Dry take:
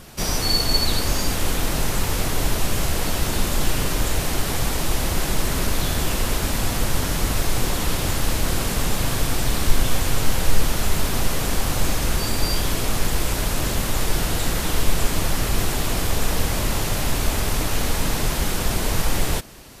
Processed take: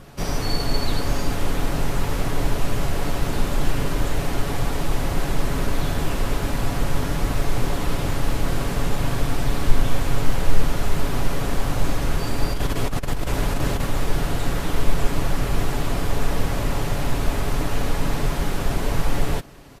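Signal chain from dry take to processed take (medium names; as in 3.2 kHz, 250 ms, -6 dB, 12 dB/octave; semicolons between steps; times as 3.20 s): treble shelf 2.9 kHz -11.5 dB; comb 7.1 ms, depth 32%; 12.53–13.86 s: compressor with a negative ratio -19 dBFS, ratio -0.5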